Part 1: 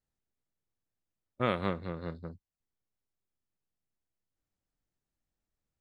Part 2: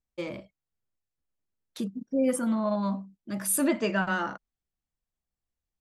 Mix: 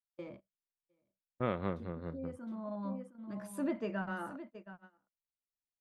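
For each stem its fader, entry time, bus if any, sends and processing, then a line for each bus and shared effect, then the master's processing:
-3.0 dB, 0.00 s, no send, no echo send, none
-9.0 dB, 0.00 s, no send, echo send -12.5 dB, auto duck -9 dB, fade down 1.60 s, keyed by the first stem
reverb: none
echo: delay 714 ms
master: low-pass 1.2 kHz 6 dB/octave; gate -49 dBFS, range -22 dB

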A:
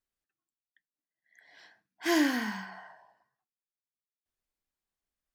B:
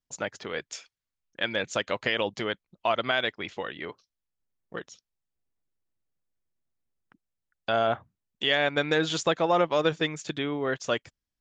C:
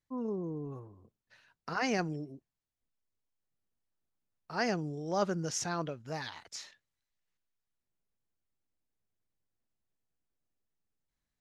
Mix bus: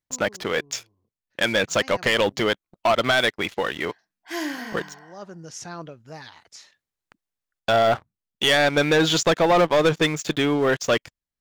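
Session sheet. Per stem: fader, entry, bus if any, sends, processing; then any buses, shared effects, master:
-1.5 dB, 2.25 s, no send, bass shelf 190 Hz -10 dB
-1.5 dB, 0.00 s, no send, waveshaping leveller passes 3
-1.0 dB, 0.00 s, no send, auto duck -12 dB, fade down 0.30 s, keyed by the second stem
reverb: none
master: none

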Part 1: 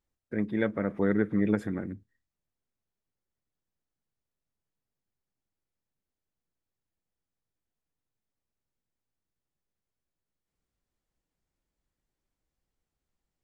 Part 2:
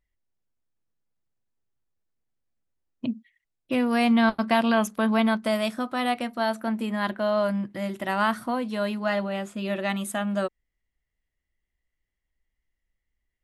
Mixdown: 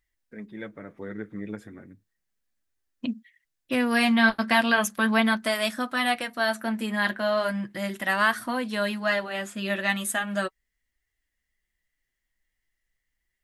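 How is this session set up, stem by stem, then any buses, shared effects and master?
-7.5 dB, 0.00 s, no send, none
+1.0 dB, 0.00 s, no send, peaking EQ 1.7 kHz +7.5 dB 0.45 oct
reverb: none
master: flange 0.36 Hz, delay 2.4 ms, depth 7.6 ms, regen -38%; treble shelf 2.1 kHz +9.5 dB

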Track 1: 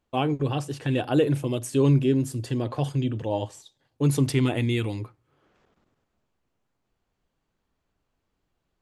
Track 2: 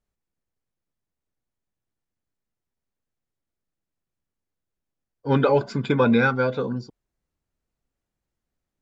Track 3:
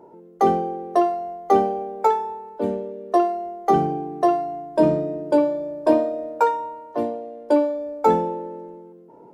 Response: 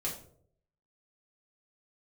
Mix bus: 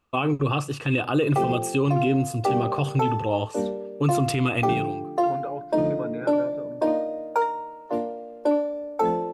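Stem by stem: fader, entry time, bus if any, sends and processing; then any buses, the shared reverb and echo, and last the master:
+2.5 dB, 0.00 s, no send, small resonant body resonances 1.2/2.6 kHz, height 15 dB, ringing for 25 ms; auto duck -21 dB, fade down 0.75 s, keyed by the second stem
-16.0 dB, 0.00 s, no send, low-pass 1.9 kHz 12 dB/octave
-2.5 dB, 0.95 s, no send, none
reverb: none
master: peak limiter -13.5 dBFS, peak gain reduction 9 dB

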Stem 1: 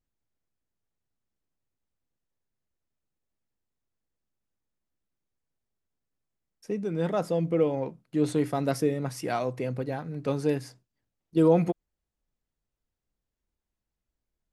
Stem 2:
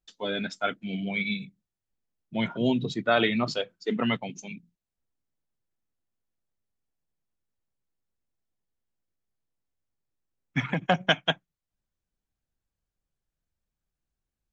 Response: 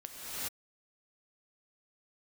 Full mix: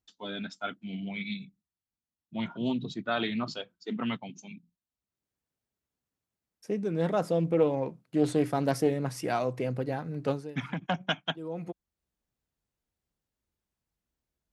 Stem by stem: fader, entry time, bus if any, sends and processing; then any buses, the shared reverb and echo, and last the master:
0.0 dB, 0.00 s, no send, treble shelf 5.9 kHz +8.5 dB; auto duck -21 dB, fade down 0.25 s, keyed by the second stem
-1.5 dB, 0.00 s, no send, ten-band graphic EQ 125 Hz -5 dB, 500 Hz -9 dB, 2 kHz -7 dB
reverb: none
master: high-pass 55 Hz; treble shelf 5.5 kHz -8.5 dB; loudspeaker Doppler distortion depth 0.16 ms

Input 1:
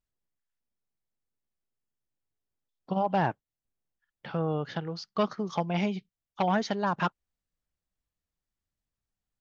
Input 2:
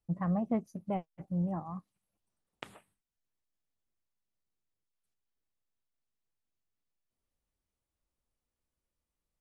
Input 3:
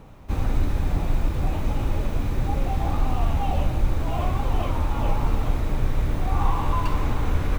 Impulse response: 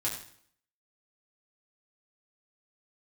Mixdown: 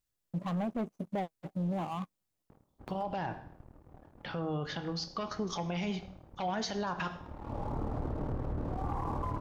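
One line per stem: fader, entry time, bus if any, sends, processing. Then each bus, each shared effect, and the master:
-3.0 dB, 0.00 s, no bus, send -9 dB, treble shelf 3.8 kHz +8 dB; peak limiter -20 dBFS, peak gain reduction 8 dB
+2.0 dB, 0.25 s, bus A, no send, median filter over 25 samples; high-pass 330 Hz 6 dB/octave
-7.0 dB, 2.50 s, bus A, no send, high-pass 150 Hz 6 dB/octave; AM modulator 38 Hz, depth 40%; Gaussian low-pass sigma 7.2 samples; auto duck -19 dB, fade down 0.40 s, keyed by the first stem
bus A: 0.0 dB, waveshaping leveller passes 2; peak limiter -27.5 dBFS, peak gain reduction 6.5 dB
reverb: on, RT60 0.60 s, pre-delay 4 ms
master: peak limiter -25.5 dBFS, peak gain reduction 6.5 dB

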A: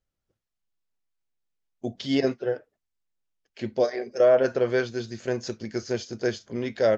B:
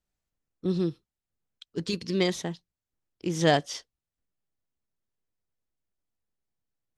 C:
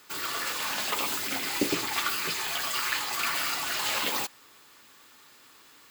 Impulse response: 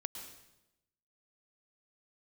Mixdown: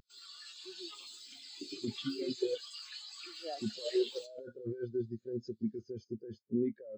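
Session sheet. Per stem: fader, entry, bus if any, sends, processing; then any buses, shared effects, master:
-8.5 dB, 0.00 s, no bus, no send, peaking EQ 710 Hz -7.5 dB 0.58 oct; compressor with a negative ratio -31 dBFS, ratio -1
-10.0 dB, 0.00 s, bus A, send -12.5 dB, high-pass 300 Hz 24 dB/octave
+2.5 dB, 0.00 s, bus A, send -10 dB, ten-band graphic EQ 250 Hz -4 dB, 500 Hz -5 dB, 1 kHz -6 dB, 2 kHz -4 dB, 4 kHz +7 dB, 8 kHz +7 dB, 16 kHz -7 dB; flange 0.35 Hz, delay 4.5 ms, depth 4.1 ms, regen +75%
bus A: 0.0 dB, upward compressor, threshold -58 dBFS; peak limiter -32 dBFS, peak gain reduction 16 dB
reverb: on, RT60 0.90 s, pre-delay 101 ms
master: spectral contrast expander 2.5:1

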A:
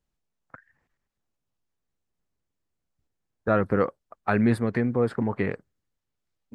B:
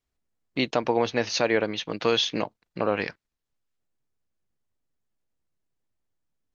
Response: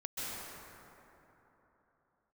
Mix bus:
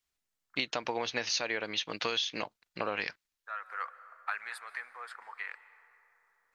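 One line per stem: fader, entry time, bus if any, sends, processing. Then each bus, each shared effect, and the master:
-4.5 dB, 0.00 s, send -18 dB, high-pass 1.1 kHz 24 dB/octave; auto duck -18 dB, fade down 0.95 s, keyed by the second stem
-3.5 dB, 0.00 s, no send, tilt shelf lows -7.5 dB, about 910 Hz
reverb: on, RT60 3.5 s, pre-delay 123 ms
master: compression 10:1, threshold -28 dBFS, peak gain reduction 11 dB

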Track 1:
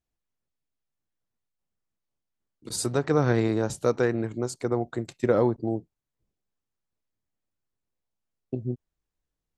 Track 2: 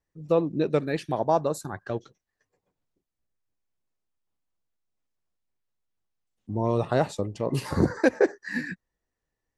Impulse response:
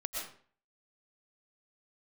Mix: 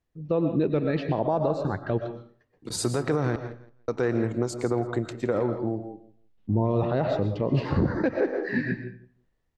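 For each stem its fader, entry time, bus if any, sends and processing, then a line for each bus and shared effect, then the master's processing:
+2.5 dB, 0.00 s, muted 3.36–3.88 s, send -9.5 dB, echo send -13 dB, treble shelf 6.1 kHz -9 dB; compression, threshold -23 dBFS, peak gain reduction 7.5 dB; auto duck -14 dB, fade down 1.30 s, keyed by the second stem
-6.0 dB, 0.00 s, send -6 dB, no echo send, low-pass 4.1 kHz 24 dB/octave; bass shelf 450 Hz +6.5 dB; level rider gain up to 7 dB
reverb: on, RT60 0.50 s, pre-delay 80 ms
echo: feedback delay 167 ms, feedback 19%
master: peak limiter -14.5 dBFS, peak gain reduction 9.5 dB

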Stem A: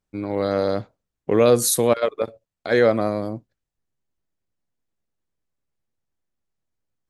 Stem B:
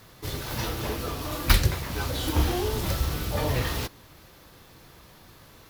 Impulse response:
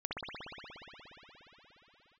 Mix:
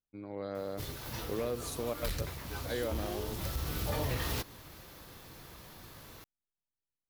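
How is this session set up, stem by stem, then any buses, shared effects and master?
-16.5 dB, 0.00 s, no send, treble shelf 6.6 kHz -9.5 dB
-0.5 dB, 0.55 s, no send, treble shelf 11 kHz +5 dB; hard clipper -18 dBFS, distortion -11 dB; auto duck -10 dB, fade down 1.05 s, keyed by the first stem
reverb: none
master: compression 6:1, threshold -30 dBFS, peak gain reduction 8 dB

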